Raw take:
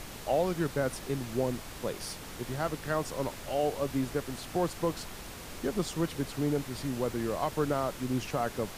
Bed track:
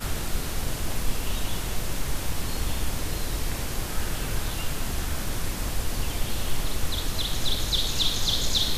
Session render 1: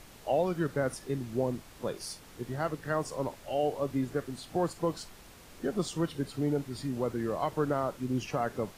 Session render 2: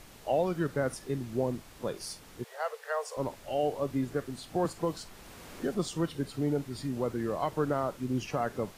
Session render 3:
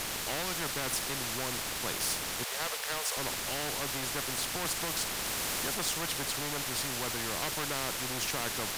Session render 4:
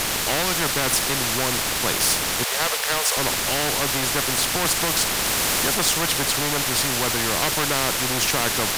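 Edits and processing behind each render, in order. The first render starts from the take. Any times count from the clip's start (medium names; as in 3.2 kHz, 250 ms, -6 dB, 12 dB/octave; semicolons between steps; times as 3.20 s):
noise print and reduce 9 dB
2.44–3.17 s: Chebyshev high-pass 440 Hz, order 8; 4.65–5.75 s: three bands compressed up and down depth 40%
waveshaping leveller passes 1; spectrum-flattening compressor 4:1
trim +12 dB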